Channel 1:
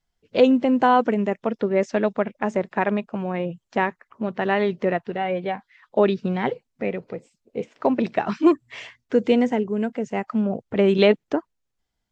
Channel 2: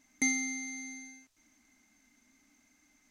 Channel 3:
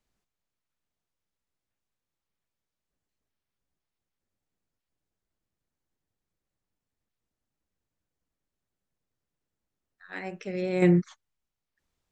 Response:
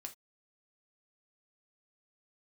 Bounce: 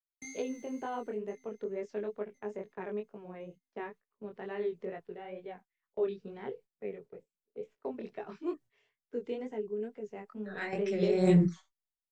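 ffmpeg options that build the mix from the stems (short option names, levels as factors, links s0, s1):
-filter_complex "[0:a]equalizer=f=420:t=o:w=0.25:g=14,volume=0.126,asplit=2[s0][s1];[1:a]lowshelf=f=220:t=q:w=1.5:g=11,aeval=exprs='sgn(val(0))*max(abs(val(0))-0.00251,0)':c=same,volume=0.168,asplit=3[s2][s3][s4];[s3]volume=0.501[s5];[s4]volume=0.126[s6];[2:a]aecho=1:1:5.3:0.95,adelay=450,volume=0.841,asplit=2[s7][s8];[s8]volume=0.708[s9];[s1]apad=whole_len=554239[s10];[s7][s10]sidechaingate=range=0.158:threshold=0.00224:ratio=16:detection=peak[s11];[3:a]atrim=start_sample=2205[s12];[s5][s9]amix=inputs=2:normalize=0[s13];[s13][s12]afir=irnorm=-1:irlink=0[s14];[s6]aecho=0:1:1062|2124|3186|4248|5310:1|0.36|0.13|0.0467|0.0168[s15];[s0][s2][s11][s14][s15]amix=inputs=5:normalize=0,agate=range=0.178:threshold=0.00355:ratio=16:detection=peak,acrossover=split=180|3000[s16][s17][s18];[s17]acompressor=threshold=0.0282:ratio=1.5[s19];[s16][s19][s18]amix=inputs=3:normalize=0,flanger=delay=18.5:depth=6:speed=2.2"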